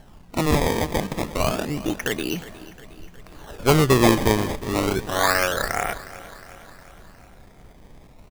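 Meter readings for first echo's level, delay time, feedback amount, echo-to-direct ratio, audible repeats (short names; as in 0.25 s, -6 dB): -17.0 dB, 0.36 s, 58%, -15.0 dB, 4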